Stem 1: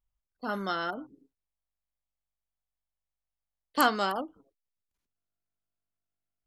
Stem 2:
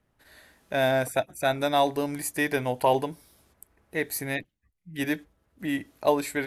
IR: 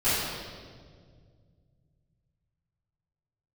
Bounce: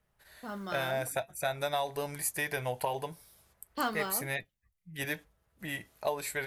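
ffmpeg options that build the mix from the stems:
-filter_complex "[0:a]agate=range=-33dB:threshold=-53dB:ratio=3:detection=peak,lowshelf=f=190:g=7.5,acrusher=bits=6:mode=log:mix=0:aa=0.000001,volume=-4.5dB[a];[1:a]equalizer=f=280:w=2.1:g=-13,acompressor=threshold=-25dB:ratio=6,highshelf=f=9.4k:g=5.5,volume=1.5dB[b];[a][b]amix=inputs=2:normalize=0,flanger=delay=4.5:depth=2.8:regen=-72:speed=0.49:shape=triangular"

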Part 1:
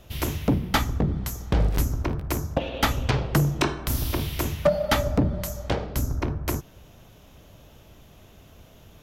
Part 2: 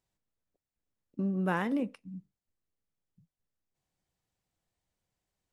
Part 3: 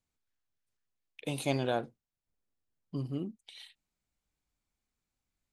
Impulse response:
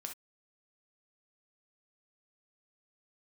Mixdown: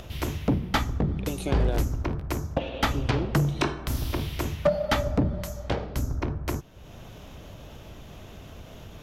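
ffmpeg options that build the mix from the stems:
-filter_complex "[0:a]acompressor=mode=upward:threshold=-31dB:ratio=2.5,highshelf=f=8.8k:g=-10,volume=-2dB[a];[1:a]volume=-10.5dB[b];[2:a]acompressor=threshold=-32dB:ratio=6,equalizer=f=370:w=1.5:g=9,volume=1dB[c];[a][b][c]amix=inputs=3:normalize=0"

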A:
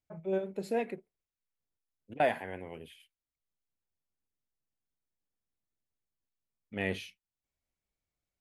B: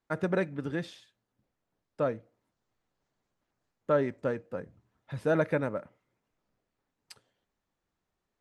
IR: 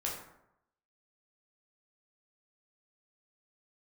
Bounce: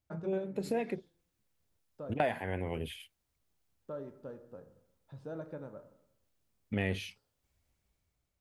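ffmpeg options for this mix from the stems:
-filter_complex "[0:a]equalizer=f=75:t=o:w=1.9:g=9.5,dynaudnorm=f=240:g=7:m=9dB,volume=1dB[a];[1:a]lowpass=5.7k,acompressor=threshold=-39dB:ratio=1.5,equalizer=f=2.1k:w=1.5:g=-14.5,volume=-12.5dB,asplit=2[b][c];[c]volume=-7dB[d];[2:a]atrim=start_sample=2205[e];[d][e]afir=irnorm=-1:irlink=0[f];[a][b][f]amix=inputs=3:normalize=0,acompressor=threshold=-32dB:ratio=3"

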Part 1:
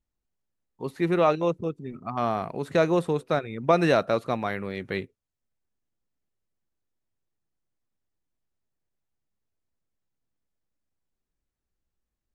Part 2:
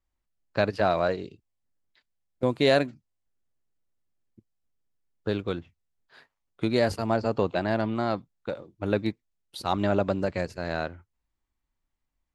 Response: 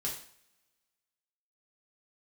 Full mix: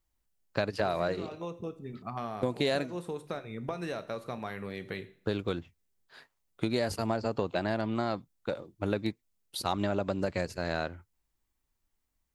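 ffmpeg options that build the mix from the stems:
-filter_complex "[0:a]acompressor=threshold=-28dB:ratio=12,volume=-6.5dB,asplit=2[a][b];[b]volume=-9.5dB[c];[1:a]acompressor=threshold=-25dB:ratio=6,volume=-0.5dB,asplit=2[d][e];[e]apad=whole_len=544250[f];[a][f]sidechaincompress=threshold=-47dB:ratio=8:attack=16:release=120[g];[2:a]atrim=start_sample=2205[h];[c][h]afir=irnorm=-1:irlink=0[i];[g][d][i]amix=inputs=3:normalize=0,highshelf=f=6k:g=8.5"

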